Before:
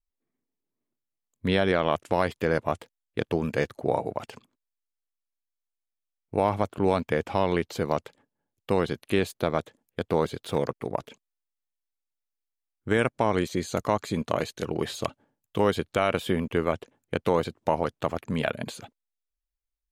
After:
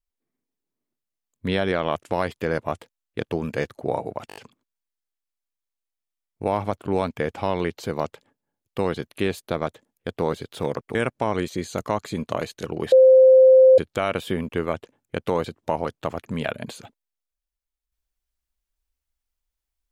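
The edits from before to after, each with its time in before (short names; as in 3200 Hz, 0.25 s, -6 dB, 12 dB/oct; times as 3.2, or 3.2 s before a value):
4.28 stutter 0.02 s, 5 plays
10.87–12.94 cut
14.91–15.77 bleep 521 Hz -8.5 dBFS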